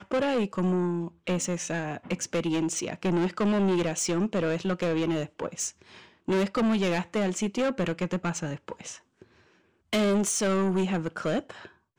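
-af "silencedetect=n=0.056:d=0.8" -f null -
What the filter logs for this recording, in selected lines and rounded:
silence_start: 8.72
silence_end: 9.93 | silence_duration: 1.21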